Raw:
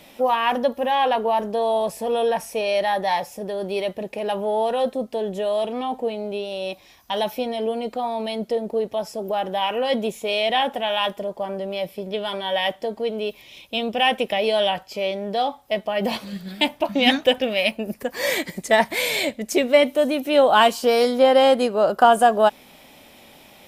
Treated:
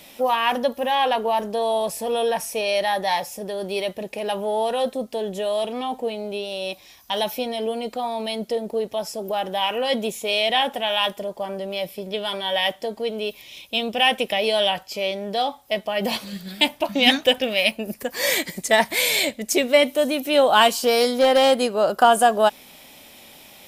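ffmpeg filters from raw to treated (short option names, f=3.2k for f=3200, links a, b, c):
-filter_complex "[0:a]asettb=1/sr,asplit=3[a][b][c];[a]atrim=end=20.734[d];[b]atrim=start=20.73:end=21.51,asetpts=PTS-STARTPTS,afade=t=in:d=0.004:c=qsin,afade=t=out:st=0.776:d=0.004:c=qsin,asoftclip=type=hard:threshold=-10.5dB[e];[c]atrim=start=21.506[f];[d][e]acrossfade=d=0.004:c1=hsin:c2=qsin[g];[g][f]acrossfade=d=0.004:c1=qsin:c2=hsin,highshelf=f=2.9k:g=8.5,volume=-1.5dB"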